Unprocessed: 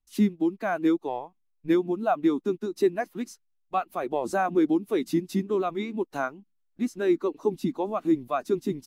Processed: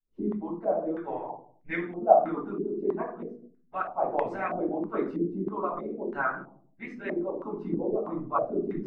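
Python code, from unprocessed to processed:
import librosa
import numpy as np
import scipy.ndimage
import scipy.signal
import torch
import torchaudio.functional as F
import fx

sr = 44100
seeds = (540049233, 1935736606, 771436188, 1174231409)

y = fx.room_shoebox(x, sr, seeds[0], volume_m3=560.0, walls='furnished', distance_m=7.3)
y = fx.hpss(y, sr, part='harmonic', gain_db=-15)
y = fx.filter_held_lowpass(y, sr, hz=3.1, low_hz=440.0, high_hz=2000.0)
y = y * librosa.db_to_amplitude(-9.0)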